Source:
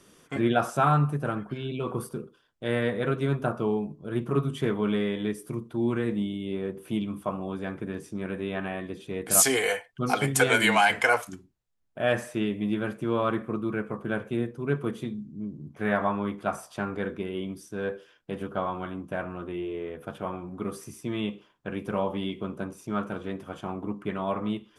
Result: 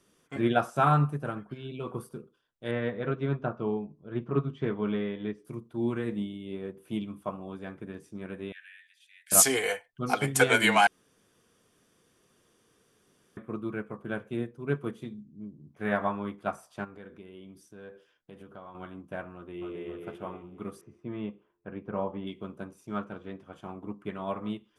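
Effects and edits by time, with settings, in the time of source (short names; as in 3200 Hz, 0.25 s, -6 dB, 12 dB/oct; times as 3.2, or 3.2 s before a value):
2.71–5.45 air absorption 190 m
8.52–9.32 steep high-pass 1600 Hz 72 dB/oct
10.87–13.37 room tone
16.84–18.75 compressor 2.5:1, threshold -36 dBFS
19.34–19.88 echo throw 0.27 s, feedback 50%, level -2.5 dB
20.81–22.27 LPF 1700 Hz
22.98–23.53 air absorption 67 m
whole clip: upward expander 1.5:1, over -39 dBFS; gain +1 dB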